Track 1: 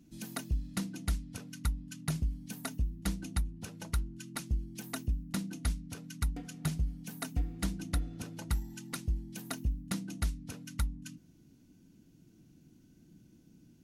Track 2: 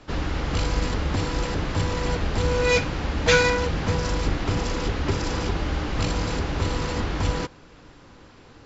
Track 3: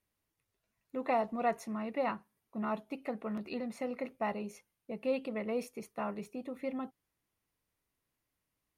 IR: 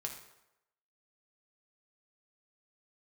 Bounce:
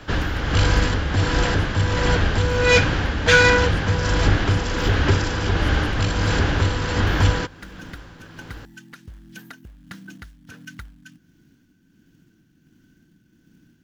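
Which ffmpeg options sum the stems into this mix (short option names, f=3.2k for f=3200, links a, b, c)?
-filter_complex "[0:a]equalizer=f=100:t=o:w=0.67:g=-6,equalizer=f=630:t=o:w=0.67:g=-4,equalizer=f=1.6k:t=o:w=0.67:g=6,equalizer=f=10k:t=o:w=0.67:g=-10,acompressor=threshold=-42dB:ratio=2.5,acrusher=bits=5:mode=log:mix=0:aa=0.000001,volume=0dB[a];[1:a]volume=0.5dB[b];[2:a]volume=2dB,asplit=2[c][d];[d]apad=whole_len=610271[e];[a][e]sidechaincompress=threshold=-39dB:ratio=8:attack=16:release=688[f];[f][c]amix=inputs=2:normalize=0,acompressor=threshold=-40dB:ratio=6,volume=0dB[g];[b][g]amix=inputs=2:normalize=0,equalizer=f=100:t=o:w=0.33:g=7,equalizer=f=1.6k:t=o:w=0.33:g=9,equalizer=f=3.15k:t=o:w=0.33:g=5,acontrast=30,tremolo=f=1.4:d=0.45"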